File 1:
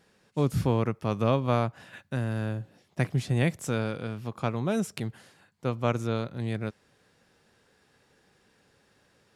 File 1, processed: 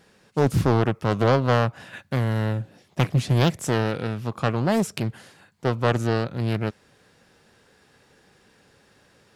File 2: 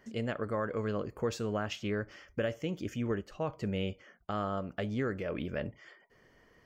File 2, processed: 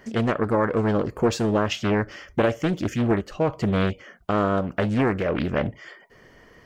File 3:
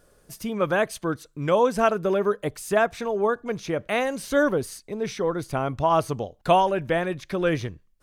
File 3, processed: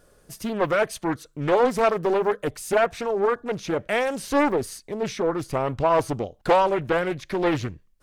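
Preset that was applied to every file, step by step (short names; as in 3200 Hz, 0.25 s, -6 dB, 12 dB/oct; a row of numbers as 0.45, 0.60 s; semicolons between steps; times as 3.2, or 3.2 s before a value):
soft clip -11.5 dBFS; Doppler distortion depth 0.63 ms; match loudness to -24 LUFS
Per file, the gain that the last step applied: +7.0, +12.0, +1.5 dB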